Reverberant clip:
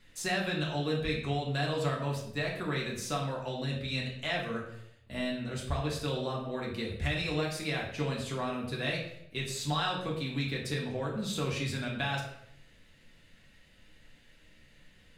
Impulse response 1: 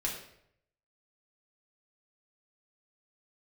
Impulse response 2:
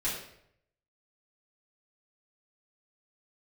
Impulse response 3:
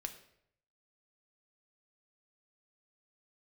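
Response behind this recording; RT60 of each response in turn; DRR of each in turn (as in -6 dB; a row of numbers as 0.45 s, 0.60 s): 1; 0.70 s, 0.70 s, 0.70 s; -3.5 dB, -10.0 dB, 6.0 dB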